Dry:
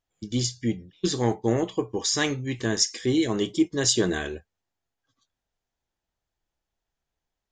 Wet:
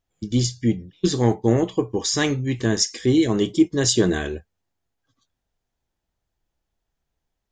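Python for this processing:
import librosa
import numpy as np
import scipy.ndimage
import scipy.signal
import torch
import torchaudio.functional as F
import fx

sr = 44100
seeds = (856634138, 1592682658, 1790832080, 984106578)

y = fx.low_shelf(x, sr, hz=410.0, db=6.0)
y = y * 10.0 ** (1.5 / 20.0)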